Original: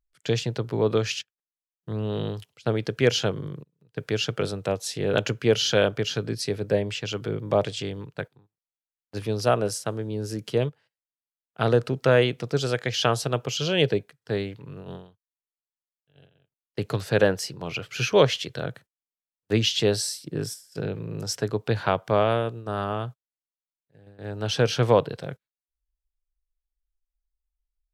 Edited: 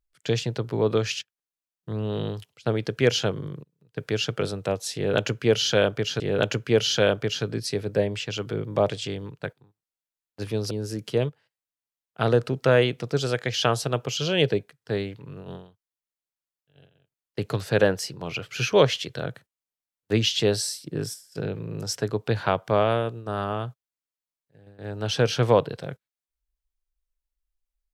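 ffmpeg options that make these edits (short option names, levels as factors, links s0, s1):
-filter_complex "[0:a]asplit=3[s0][s1][s2];[s0]atrim=end=6.202[s3];[s1]atrim=start=4.948:end=9.462[s4];[s2]atrim=start=10.108[s5];[s3][s4]acrossfade=d=0.004:c1=hsin:c2=hsin[s6];[s6][s5]acrossfade=d=0.004:c1=hsin:c2=hsin"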